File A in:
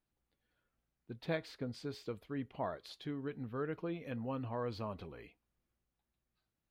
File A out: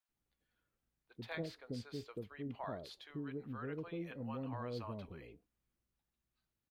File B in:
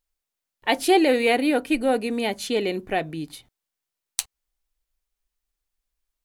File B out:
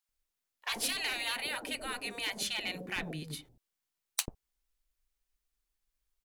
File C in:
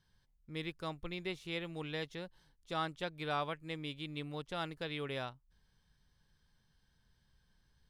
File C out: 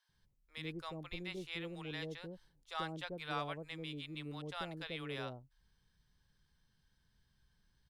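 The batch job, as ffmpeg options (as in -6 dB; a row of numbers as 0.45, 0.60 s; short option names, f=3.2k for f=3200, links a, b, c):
-filter_complex "[0:a]afftfilt=real='re*lt(hypot(re,im),0.178)':imag='im*lt(hypot(re,im),0.178)':win_size=1024:overlap=0.75,aeval=exprs='clip(val(0),-1,0.0501)':c=same,acrossover=split=640[a][b];[a]adelay=90[c];[c][b]amix=inputs=2:normalize=0,volume=-2dB"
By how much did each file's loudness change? -3.5, -12.5, -3.0 LU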